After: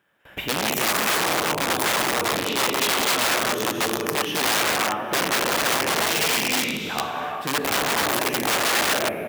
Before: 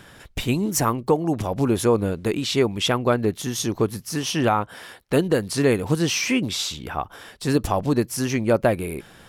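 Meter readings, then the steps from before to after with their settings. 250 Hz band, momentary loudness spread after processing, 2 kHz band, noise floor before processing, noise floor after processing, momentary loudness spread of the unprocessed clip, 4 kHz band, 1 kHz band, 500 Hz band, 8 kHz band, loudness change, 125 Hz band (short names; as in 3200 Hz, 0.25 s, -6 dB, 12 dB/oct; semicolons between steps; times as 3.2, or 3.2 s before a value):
-7.5 dB, 5 LU, +8.5 dB, -48 dBFS, -33 dBFS, 10 LU, +6.0 dB, +4.5 dB, -4.0 dB, +5.0 dB, +1.5 dB, -12.0 dB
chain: band shelf 6500 Hz -15 dB; tapped delay 71/186/631 ms -19.5/-9/-18 dB; non-linear reverb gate 0.43 s flat, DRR -1 dB; gate with hold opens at -33 dBFS; wrapped overs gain 15 dB; HPF 410 Hz 6 dB/oct; companded quantiser 8-bit; limiter -13.5 dBFS, peak gain reduction 3.5 dB; gain +1.5 dB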